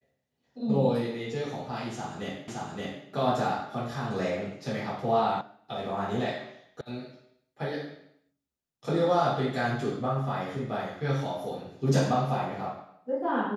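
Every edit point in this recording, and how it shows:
2.48 s: repeat of the last 0.57 s
5.41 s: sound stops dead
6.81 s: sound stops dead

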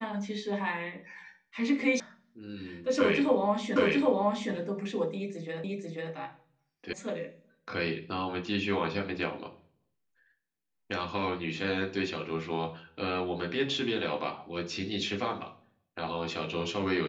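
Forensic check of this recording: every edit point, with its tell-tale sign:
2.00 s: sound stops dead
3.76 s: repeat of the last 0.77 s
5.64 s: repeat of the last 0.49 s
6.93 s: sound stops dead

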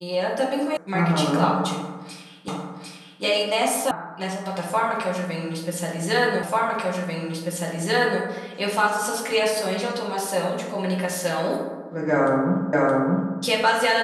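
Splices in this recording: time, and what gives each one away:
0.77 s: sound stops dead
2.48 s: repeat of the last 0.75 s
3.91 s: sound stops dead
6.43 s: repeat of the last 1.79 s
12.73 s: repeat of the last 0.62 s

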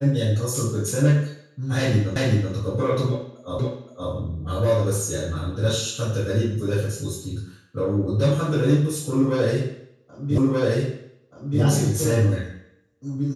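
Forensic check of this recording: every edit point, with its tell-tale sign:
2.16 s: repeat of the last 0.38 s
3.59 s: repeat of the last 0.52 s
10.38 s: repeat of the last 1.23 s

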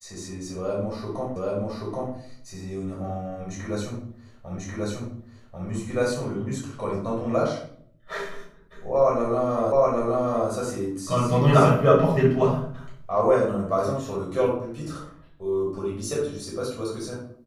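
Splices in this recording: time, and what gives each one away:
1.36 s: repeat of the last 0.78 s
4.58 s: repeat of the last 1.09 s
9.72 s: repeat of the last 0.77 s

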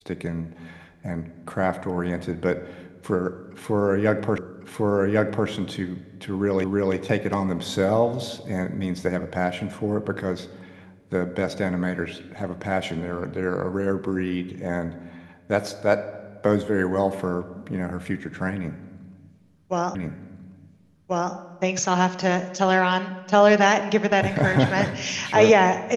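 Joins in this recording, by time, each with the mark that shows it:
4.38 s: repeat of the last 1.1 s
6.64 s: repeat of the last 0.32 s
19.95 s: repeat of the last 1.39 s

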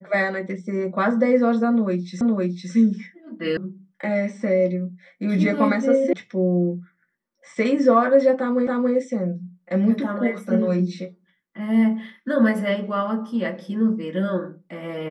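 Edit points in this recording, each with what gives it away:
2.21 s: repeat of the last 0.51 s
3.57 s: sound stops dead
6.13 s: sound stops dead
8.67 s: repeat of the last 0.28 s

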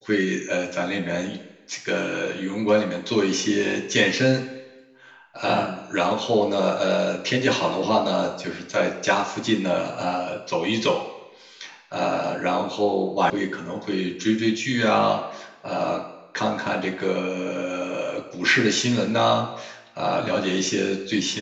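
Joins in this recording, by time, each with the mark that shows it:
13.30 s: sound stops dead

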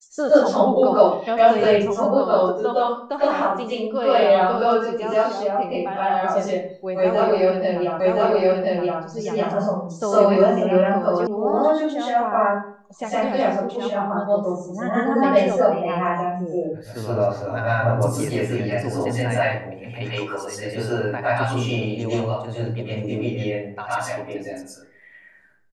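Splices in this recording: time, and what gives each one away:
8.00 s: repeat of the last 1.02 s
11.27 s: sound stops dead

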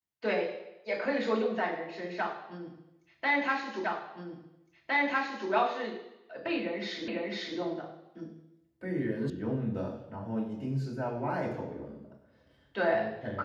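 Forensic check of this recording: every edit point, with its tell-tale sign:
3.84 s: repeat of the last 1.66 s
7.08 s: repeat of the last 0.5 s
9.30 s: sound stops dead

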